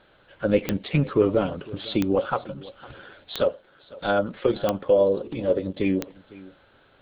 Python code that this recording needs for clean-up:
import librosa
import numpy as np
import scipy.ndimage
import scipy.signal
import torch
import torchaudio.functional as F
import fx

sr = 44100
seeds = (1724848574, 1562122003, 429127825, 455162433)

y = fx.fix_declick_ar(x, sr, threshold=10.0)
y = fx.fix_echo_inverse(y, sr, delay_ms=505, level_db=-20.5)